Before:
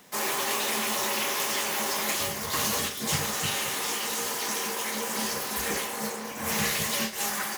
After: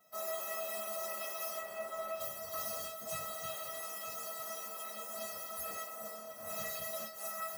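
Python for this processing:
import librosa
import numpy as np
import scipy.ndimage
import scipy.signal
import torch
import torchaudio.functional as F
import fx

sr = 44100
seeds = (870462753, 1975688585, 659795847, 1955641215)

y = fx.median_filter(x, sr, points=9, at=(1.59, 2.2))
y = fx.highpass(y, sr, hz=110.0, slope=6)
y = fx.band_shelf(y, sr, hz=4100.0, db=-10.5, octaves=2.8)
y = fx.comb_fb(y, sr, f0_hz=650.0, decay_s=0.21, harmonics='all', damping=0.0, mix_pct=100)
y = y + 10.0 ** (-12.5 / 20.0) * np.pad(y, (int(945 * sr / 1000.0), 0))[:len(y)]
y = y * librosa.db_to_amplitude(9.0)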